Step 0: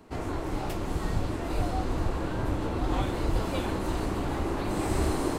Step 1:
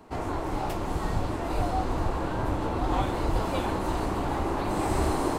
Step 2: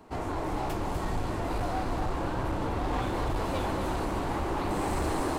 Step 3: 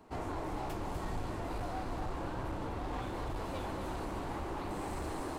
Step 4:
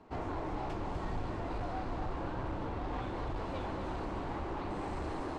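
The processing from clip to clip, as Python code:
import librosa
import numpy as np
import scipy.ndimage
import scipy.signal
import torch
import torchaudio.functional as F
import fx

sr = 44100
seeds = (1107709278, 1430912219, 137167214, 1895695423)

y1 = fx.peak_eq(x, sr, hz=870.0, db=6.0, octaves=1.1)
y2 = np.clip(y1, -10.0 ** (-25.0 / 20.0), 10.0 ** (-25.0 / 20.0))
y2 = y2 + 10.0 ** (-6.5 / 20.0) * np.pad(y2, (int(249 * sr / 1000.0), 0))[:len(y2)]
y2 = F.gain(torch.from_numpy(y2), -1.5).numpy()
y3 = fx.rider(y2, sr, range_db=10, speed_s=0.5)
y3 = F.gain(torch.from_numpy(y3), -8.0).numpy()
y4 = fx.air_absorb(y3, sr, metres=110.0)
y4 = F.gain(torch.from_numpy(y4), 1.0).numpy()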